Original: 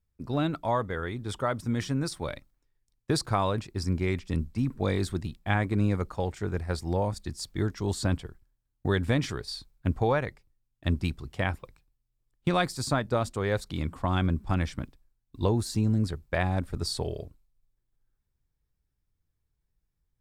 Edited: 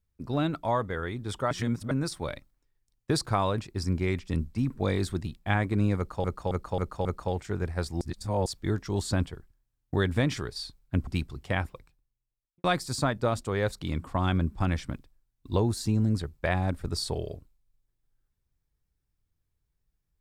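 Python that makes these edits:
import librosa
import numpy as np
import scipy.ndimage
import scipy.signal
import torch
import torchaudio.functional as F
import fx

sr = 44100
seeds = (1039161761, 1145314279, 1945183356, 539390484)

y = fx.studio_fade_out(x, sr, start_s=11.63, length_s=0.9)
y = fx.edit(y, sr, fx.reverse_span(start_s=1.51, length_s=0.4),
    fx.repeat(start_s=5.97, length_s=0.27, count=5),
    fx.reverse_span(start_s=6.93, length_s=0.45),
    fx.cut(start_s=9.99, length_s=0.97), tone=tone)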